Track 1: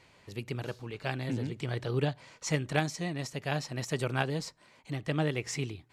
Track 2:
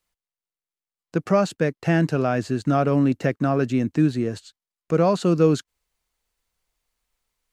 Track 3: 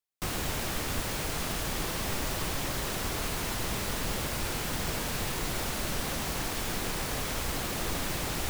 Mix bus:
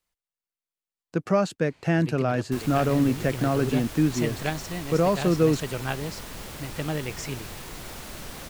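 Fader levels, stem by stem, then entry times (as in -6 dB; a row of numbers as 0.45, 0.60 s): 0.0, -3.0, -6.5 dB; 1.70, 0.00, 2.30 s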